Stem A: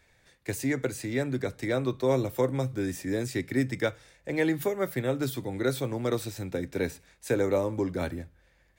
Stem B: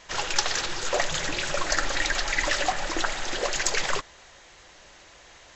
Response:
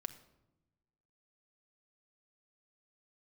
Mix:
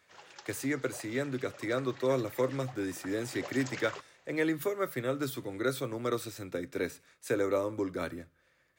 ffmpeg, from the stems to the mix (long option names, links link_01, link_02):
-filter_complex "[0:a]equalizer=frequency=200:width_type=o:width=0.33:gain=-8,equalizer=frequency=800:width_type=o:width=0.33:gain=-7,equalizer=frequency=1250:width_type=o:width=0.33:gain=8,volume=-3dB[link_01];[1:a]highshelf=frequency=4000:gain=-9,volume=-13.5dB,afade=type=in:start_time=2.97:duration=0.51:silence=0.354813[link_02];[link_01][link_02]amix=inputs=2:normalize=0,highpass=140"